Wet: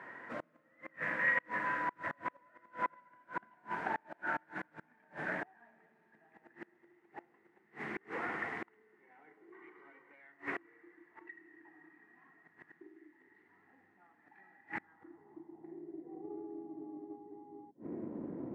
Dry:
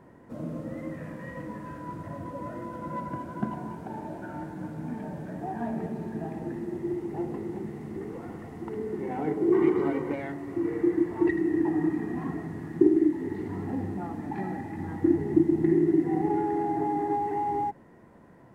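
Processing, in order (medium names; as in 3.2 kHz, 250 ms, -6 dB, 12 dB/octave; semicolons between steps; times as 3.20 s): inverted gate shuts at -27 dBFS, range -32 dB; band-pass sweep 1.8 kHz -> 300 Hz, 14.73–16.65 s; loudspeaker Doppler distortion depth 0.23 ms; trim +17 dB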